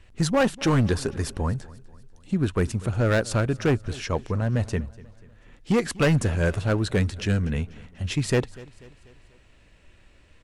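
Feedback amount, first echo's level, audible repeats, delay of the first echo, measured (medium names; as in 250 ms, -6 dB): 50%, -21.0 dB, 3, 244 ms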